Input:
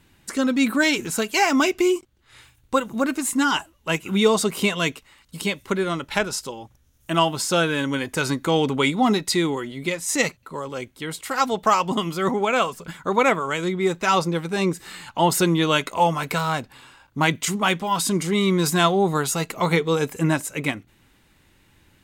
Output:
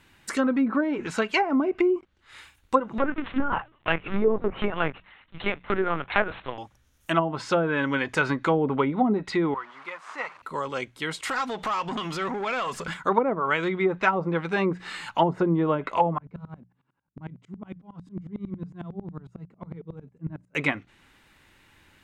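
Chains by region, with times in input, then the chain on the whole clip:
2.98–6.58 s: block-companded coder 3-bit + Bessel low-pass 3 kHz + LPC vocoder at 8 kHz pitch kept
9.54–10.42 s: one-bit delta coder 64 kbps, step -31 dBFS + band-pass filter 1.1 kHz, Q 2.9 + tape noise reduction on one side only encoder only
11.23–12.94 s: compression 5:1, threshold -32 dBFS + waveshaping leveller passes 2
16.18–20.55 s: band-pass filter 170 Hz, Q 2.1 + sawtooth tremolo in dB swelling 11 Hz, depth 28 dB
whole clip: low-pass that closes with the level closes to 460 Hz, closed at -14.5 dBFS; peaking EQ 1.6 kHz +7.5 dB 2.7 oct; hum notches 60/120/180 Hz; trim -3.5 dB

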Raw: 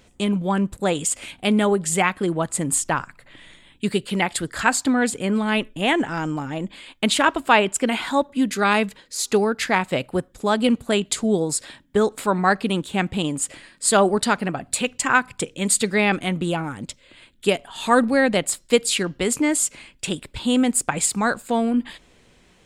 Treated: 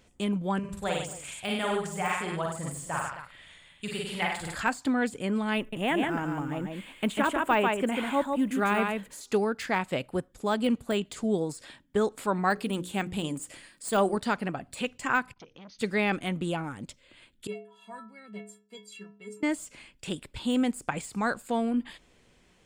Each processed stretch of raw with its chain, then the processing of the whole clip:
0.59–4.55 s: peaking EQ 290 Hz -13.5 dB 1.1 oct + multi-tap echo 43/55/97/146/226/266 ms -5/-4.5/-6/-9/-16.5/-14 dB
5.58–9.21 s: companding laws mixed up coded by mu + peaking EQ 4.9 kHz -13.5 dB + delay 144 ms -4.5 dB
12.50–14.17 s: treble shelf 7.5 kHz +12 dB + hum notches 60/120/180/240/300/360/420/480/540 Hz
15.33–15.79 s: compression 3:1, threshold -36 dBFS + brick-wall FIR low-pass 6.5 kHz + transformer saturation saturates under 870 Hz
17.47–19.43 s: high-pass 83 Hz + treble shelf 3.7 kHz -7 dB + inharmonic resonator 200 Hz, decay 0.55 s, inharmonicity 0.03
whole clip: band-stop 3.9 kHz, Q 24; de-esser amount 60%; trim -7 dB

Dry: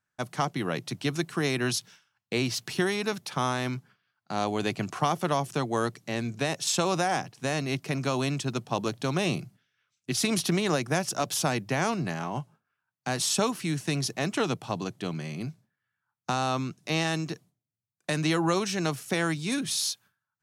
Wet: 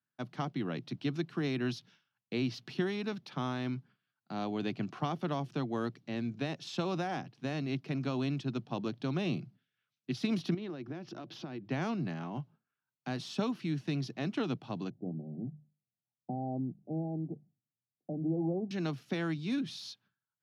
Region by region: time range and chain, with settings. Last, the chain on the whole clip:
10.54–11.71 s: boxcar filter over 5 samples + peaking EQ 340 Hz +9.5 dB 0.32 oct + compression, threshold -32 dBFS
14.90–18.71 s: Chebyshev low-pass 790 Hz, order 6 + hum notches 50/100/150/200 Hz
whole clip: graphic EQ 125/250/500/1000/2000/8000 Hz +10/+4/-5/-5/-5/-11 dB; de-esser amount 70%; three-band isolator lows -16 dB, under 200 Hz, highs -19 dB, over 5.3 kHz; trim -4.5 dB

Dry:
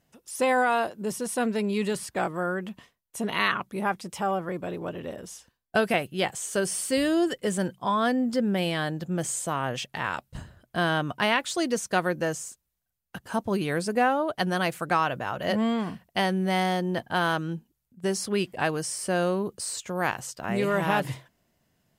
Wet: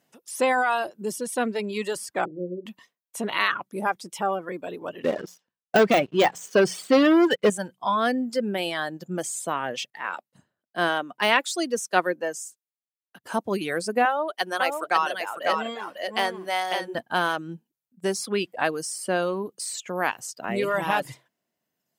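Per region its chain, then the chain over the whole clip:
2.25–2.66 s: steep low-pass 510 Hz 48 dB/octave + doubling 39 ms -8 dB
5.04–7.50 s: distance through air 170 m + hum notches 60/120/180 Hz + waveshaping leveller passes 3
9.90–13.24 s: high-pass 200 Hz + three bands expanded up and down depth 70%
14.05–16.95 s: high-pass 410 Hz + delay 549 ms -4 dB
whole clip: high-pass 220 Hz 12 dB/octave; reverb removal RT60 1.4 s; de-esser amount 55%; trim +2.5 dB

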